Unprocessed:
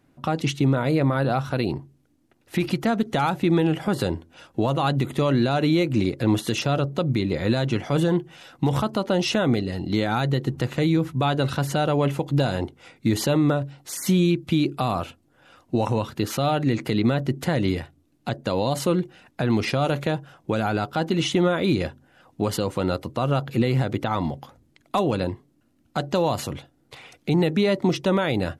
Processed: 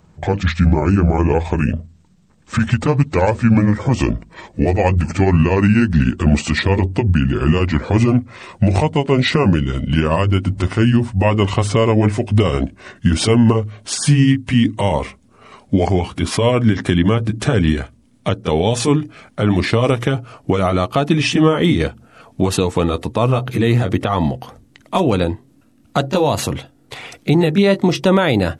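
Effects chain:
pitch glide at a constant tempo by −8.5 semitones ending unshifted
parametric band 8,300 Hz +2.5 dB 0.28 octaves
in parallel at −3 dB: downward compressor, threshold −34 dBFS, peak gain reduction 16.5 dB
on the sum: level +7.5 dB

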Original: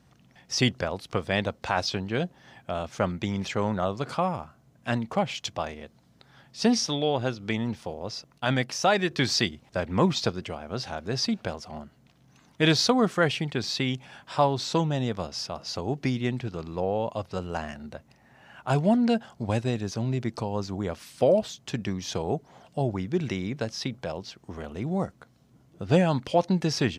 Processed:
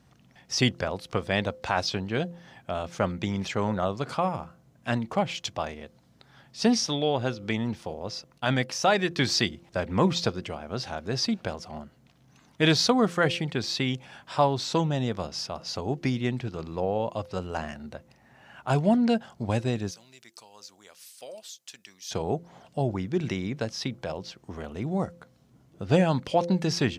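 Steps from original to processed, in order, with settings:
0:19.91–0:22.11: first difference
hum removal 172.2 Hz, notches 3

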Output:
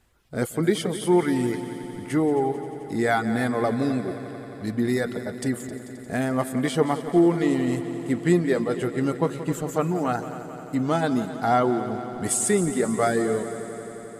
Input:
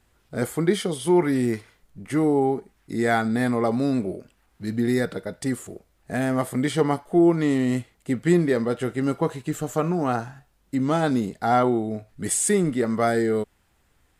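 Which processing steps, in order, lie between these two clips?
reverb reduction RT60 0.72 s
on a send: echo machine with several playback heads 88 ms, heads second and third, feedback 73%, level −14 dB

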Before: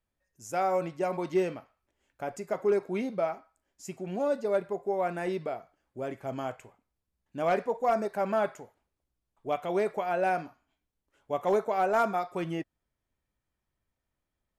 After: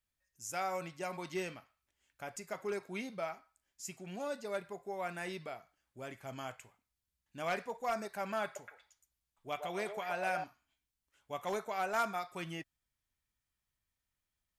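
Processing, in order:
guitar amp tone stack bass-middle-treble 5-5-5
0:08.44–0:10.44: echo through a band-pass that steps 118 ms, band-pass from 650 Hz, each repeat 1.4 octaves, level −3 dB
level +8 dB

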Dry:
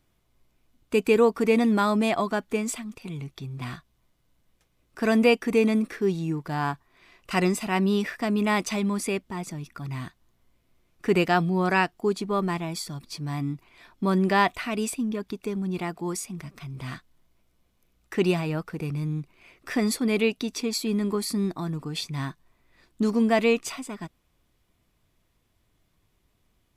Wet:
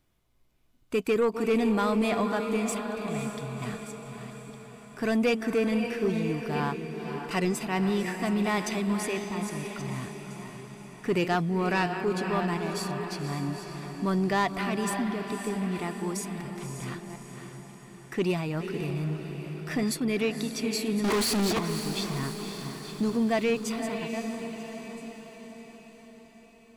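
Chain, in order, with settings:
delay that plays each chunk backwards 660 ms, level −12.5 dB
0:21.04–0:21.59: mid-hump overdrive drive 40 dB, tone 6,100 Hz, clips at −16 dBFS
on a send: feedback delay with all-pass diffusion 541 ms, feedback 57%, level −8.5 dB
on the sum: soft clipping −15.5 dBFS, distortion −17 dB
level −2.5 dB

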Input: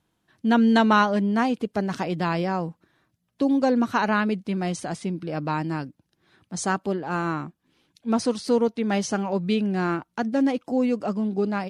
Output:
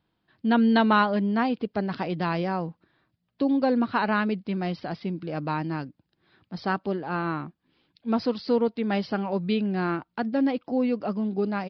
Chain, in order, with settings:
downsampling to 11,025 Hz
level −2 dB

